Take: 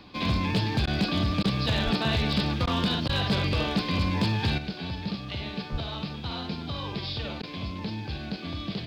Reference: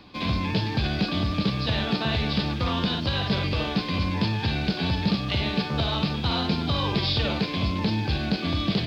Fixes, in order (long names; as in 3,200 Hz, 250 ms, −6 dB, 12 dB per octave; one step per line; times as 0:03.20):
clipped peaks rebuilt −18.5 dBFS
0:01.84–0:01.96: high-pass filter 140 Hz 24 dB per octave
0:05.71–0:05.83: high-pass filter 140 Hz 24 dB per octave
repair the gap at 0:00.86/0:01.43/0:02.66/0:03.08/0:07.42, 11 ms
level 0 dB, from 0:04.58 +8.5 dB